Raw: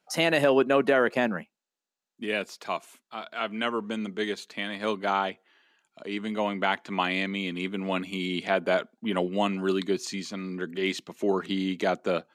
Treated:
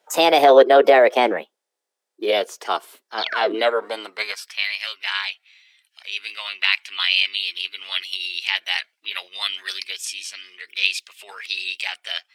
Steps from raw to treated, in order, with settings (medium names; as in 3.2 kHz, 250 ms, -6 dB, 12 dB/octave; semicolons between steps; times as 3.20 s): painted sound fall, 3.18–3.55 s, 220–4500 Hz -30 dBFS; formant shift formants +4 st; high-pass sweep 430 Hz -> 2.5 kHz, 3.53–4.81 s; trim +6 dB